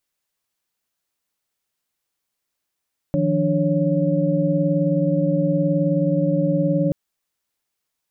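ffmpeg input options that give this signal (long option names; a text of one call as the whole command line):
ffmpeg -f lavfi -i "aevalsrc='0.0794*(sin(2*PI*155.56*t)+sin(2*PI*174.61*t)+sin(2*PI*293.66*t)+sin(2*PI*554.37*t))':duration=3.78:sample_rate=44100" out.wav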